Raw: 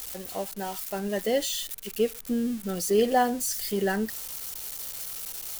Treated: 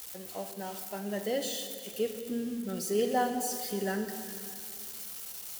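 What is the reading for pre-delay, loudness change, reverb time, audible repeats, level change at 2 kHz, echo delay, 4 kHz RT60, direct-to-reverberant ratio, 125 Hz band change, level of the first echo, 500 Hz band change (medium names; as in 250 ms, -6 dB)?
4 ms, -5.5 dB, 2.5 s, no echo, -5.5 dB, no echo, 2.3 s, 6.0 dB, -5.0 dB, no echo, -5.5 dB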